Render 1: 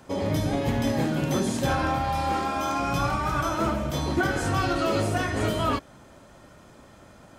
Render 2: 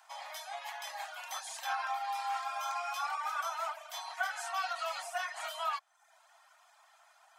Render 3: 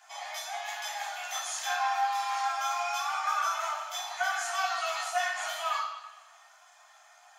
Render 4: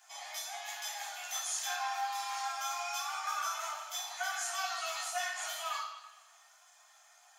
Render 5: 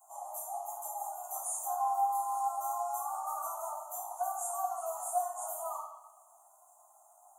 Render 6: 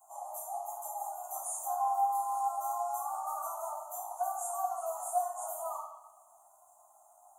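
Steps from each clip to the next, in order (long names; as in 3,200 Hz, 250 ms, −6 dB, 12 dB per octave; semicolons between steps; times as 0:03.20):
reverb reduction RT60 0.68 s; Butterworth high-pass 670 Hz 96 dB per octave; level −6 dB
convolution reverb RT60 1.0 s, pre-delay 3 ms, DRR −3 dB; level −4 dB
high-shelf EQ 3,900 Hz +11 dB; level −8 dB
inverse Chebyshev band-stop filter 1,600–5,400 Hz, stop band 40 dB; level +7 dB
low-shelf EQ 500 Hz +7.5 dB; level −1.5 dB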